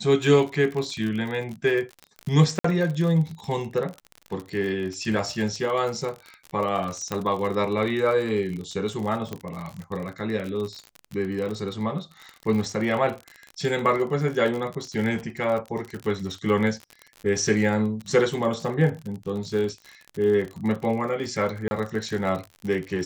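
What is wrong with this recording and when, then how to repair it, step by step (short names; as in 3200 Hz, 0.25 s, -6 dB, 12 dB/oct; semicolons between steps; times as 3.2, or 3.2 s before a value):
crackle 48/s -30 dBFS
2.59–2.64 gap 54 ms
7.12 pop -13 dBFS
9.33 pop -17 dBFS
21.68–21.71 gap 30 ms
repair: de-click; interpolate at 2.59, 54 ms; interpolate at 21.68, 30 ms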